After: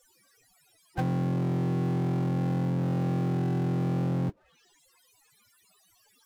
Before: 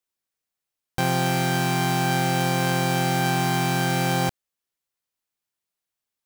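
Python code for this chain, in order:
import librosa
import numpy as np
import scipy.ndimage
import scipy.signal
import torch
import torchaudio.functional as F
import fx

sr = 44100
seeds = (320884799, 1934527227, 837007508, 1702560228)

y = fx.env_lowpass_down(x, sr, base_hz=330.0, full_db=-20.0)
y = fx.spec_topn(y, sr, count=16)
y = fx.power_curve(y, sr, exponent=0.5)
y = y * 10.0 ** (-5.0 / 20.0)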